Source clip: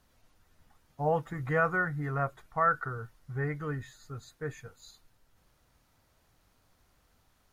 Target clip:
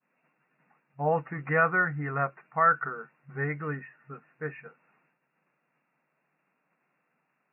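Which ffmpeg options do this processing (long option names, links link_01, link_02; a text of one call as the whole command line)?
ffmpeg -i in.wav -af "highshelf=frequency=2100:gain=11,agate=range=-33dB:threshold=-57dB:ratio=3:detection=peak,afftfilt=real='re*between(b*sr/4096,130,2800)':imag='im*between(b*sr/4096,130,2800)':win_size=4096:overlap=0.75,volume=1dB" out.wav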